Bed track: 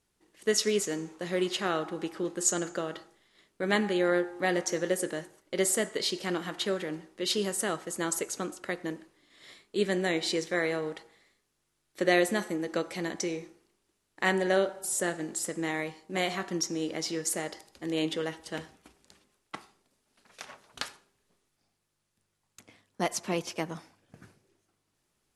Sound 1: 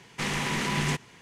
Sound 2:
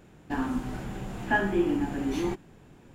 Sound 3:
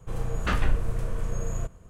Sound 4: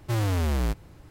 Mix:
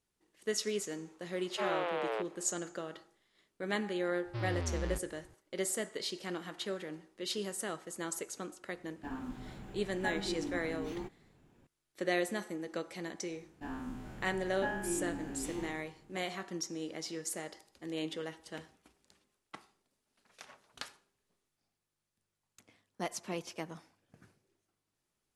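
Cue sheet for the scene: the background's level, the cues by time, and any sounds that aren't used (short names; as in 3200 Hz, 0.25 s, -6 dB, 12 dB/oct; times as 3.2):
bed track -8 dB
1.49 add 4 -3.5 dB + mistuned SSB +260 Hz 150–3200 Hz
4.25 add 4 -11 dB + elliptic low-pass 5100 Hz
8.73 add 2 -12 dB + decimation joined by straight lines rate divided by 2×
13.31 add 2 -14 dB + spectral trails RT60 0.86 s
not used: 1, 3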